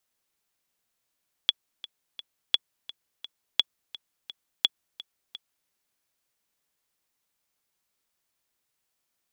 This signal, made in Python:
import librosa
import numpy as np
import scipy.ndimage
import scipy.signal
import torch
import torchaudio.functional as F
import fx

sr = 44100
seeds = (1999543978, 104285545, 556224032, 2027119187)

y = fx.click_track(sr, bpm=171, beats=3, bars=4, hz=3390.0, accent_db=18.5, level_db=-6.5)